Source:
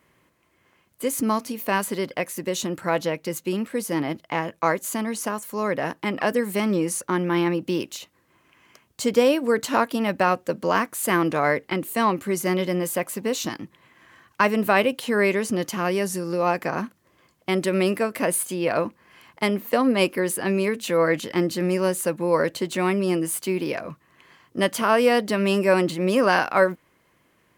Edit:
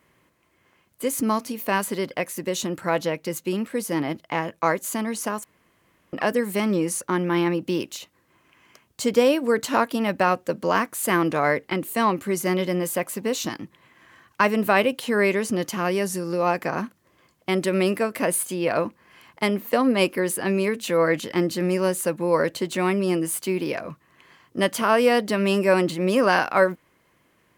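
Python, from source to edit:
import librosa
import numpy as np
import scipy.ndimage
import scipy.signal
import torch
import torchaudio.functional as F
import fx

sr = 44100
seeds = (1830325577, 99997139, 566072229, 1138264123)

y = fx.edit(x, sr, fx.room_tone_fill(start_s=5.44, length_s=0.69), tone=tone)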